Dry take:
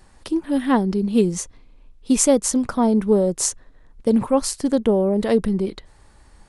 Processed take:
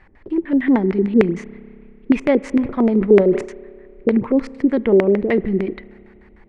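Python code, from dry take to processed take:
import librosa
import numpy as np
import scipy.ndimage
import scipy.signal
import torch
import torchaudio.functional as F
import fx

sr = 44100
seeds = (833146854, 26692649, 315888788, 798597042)

y = fx.filter_lfo_lowpass(x, sr, shape='square', hz=6.6, low_hz=370.0, high_hz=2100.0, q=4.4)
y = fx.rev_spring(y, sr, rt60_s=2.5, pass_ms=(30,), chirp_ms=60, drr_db=20.0)
y = fx.sustainer(y, sr, db_per_s=130.0, at=(2.51, 4.09))
y = y * 10.0 ** (-1.0 / 20.0)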